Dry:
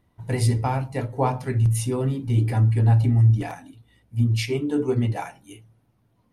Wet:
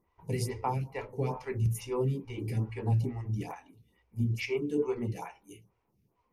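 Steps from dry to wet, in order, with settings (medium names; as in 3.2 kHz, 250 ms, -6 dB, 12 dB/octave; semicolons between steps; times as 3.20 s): rippled EQ curve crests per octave 0.79, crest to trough 8 dB; lamp-driven phase shifter 2.3 Hz; trim -4.5 dB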